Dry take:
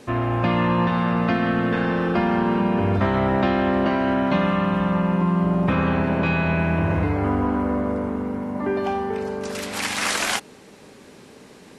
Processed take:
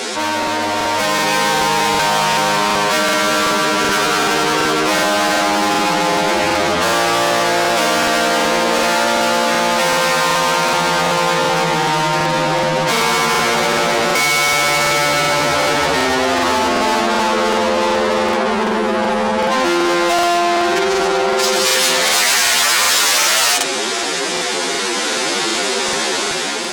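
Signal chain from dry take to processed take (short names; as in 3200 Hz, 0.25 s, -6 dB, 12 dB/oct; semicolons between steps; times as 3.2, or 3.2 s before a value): high shelf 8500 Hz -3 dB; overdrive pedal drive 35 dB, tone 4900 Hz, clips at -7.5 dBFS; AGC gain up to 11 dB; time stretch by phase-locked vocoder 2×; tone controls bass -12 dB, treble +10 dB; wide varispeed 0.882×; crackling interface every 0.38 s, samples 2048, repeat, from 0.38; fast leveller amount 50%; gain -9.5 dB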